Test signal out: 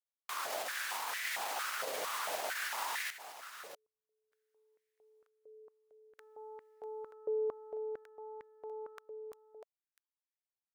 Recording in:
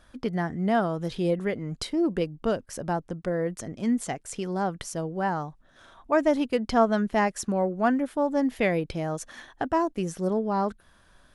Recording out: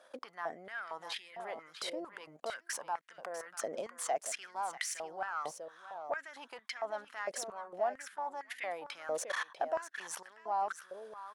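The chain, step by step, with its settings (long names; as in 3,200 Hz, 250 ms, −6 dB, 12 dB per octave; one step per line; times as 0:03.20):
brickwall limiter −21.5 dBFS
output level in coarse steps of 23 dB
tube saturation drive 34 dB, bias 0.3
single-tap delay 645 ms −11 dB
high-pass on a step sequencer 4.4 Hz 540–1,900 Hz
level +8 dB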